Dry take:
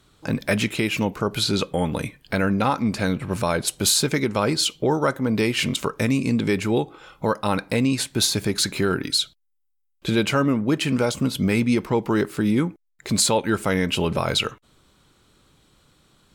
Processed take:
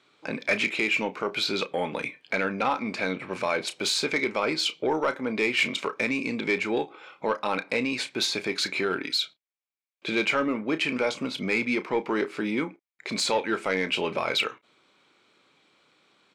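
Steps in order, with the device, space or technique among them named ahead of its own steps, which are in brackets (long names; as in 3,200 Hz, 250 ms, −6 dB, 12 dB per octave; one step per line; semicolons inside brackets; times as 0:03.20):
intercom (band-pass filter 330–4,800 Hz; parametric band 2,300 Hz +10 dB 0.23 octaves; soft clipping −13 dBFS, distortion −18 dB; double-tracking delay 32 ms −12 dB)
level −2 dB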